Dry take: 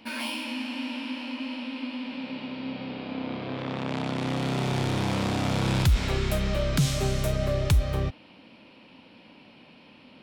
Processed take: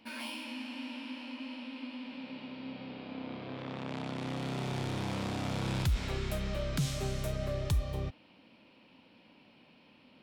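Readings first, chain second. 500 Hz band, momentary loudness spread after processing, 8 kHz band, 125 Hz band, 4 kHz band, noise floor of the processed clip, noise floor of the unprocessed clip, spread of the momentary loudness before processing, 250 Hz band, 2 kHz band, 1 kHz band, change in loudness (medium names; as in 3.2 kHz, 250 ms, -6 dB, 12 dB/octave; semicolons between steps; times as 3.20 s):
-8.5 dB, 10 LU, -8.5 dB, -8.5 dB, -8.5 dB, -62 dBFS, -53 dBFS, 10 LU, -8.5 dB, -8.5 dB, -8.5 dB, -8.5 dB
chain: spectral replace 7.73–8.04 s, 1.1–3 kHz after; trim -8.5 dB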